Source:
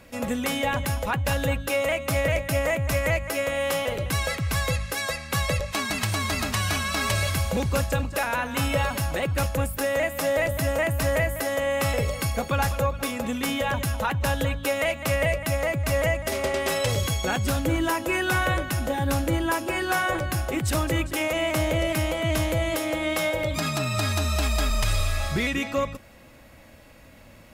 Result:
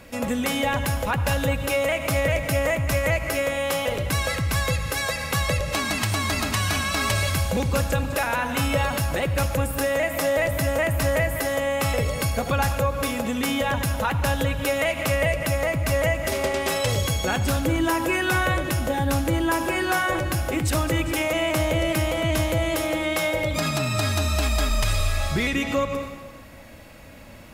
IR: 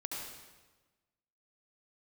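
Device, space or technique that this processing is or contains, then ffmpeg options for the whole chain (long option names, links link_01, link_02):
ducked reverb: -filter_complex "[0:a]asplit=3[link_01][link_02][link_03];[1:a]atrim=start_sample=2205[link_04];[link_02][link_04]afir=irnorm=-1:irlink=0[link_05];[link_03]apad=whole_len=1214490[link_06];[link_05][link_06]sidechaincompress=threshold=-33dB:ratio=8:attack=16:release=114,volume=-0.5dB[link_07];[link_01][link_07]amix=inputs=2:normalize=0"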